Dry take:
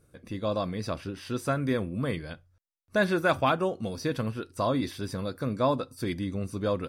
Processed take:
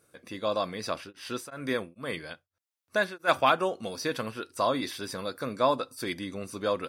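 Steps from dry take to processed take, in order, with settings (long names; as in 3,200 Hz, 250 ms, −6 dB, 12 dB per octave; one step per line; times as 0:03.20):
high-pass filter 680 Hz 6 dB per octave
0:00.96–0:03.27: tremolo along a rectified sine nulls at 3.1 Hz → 1.2 Hz
level +4.5 dB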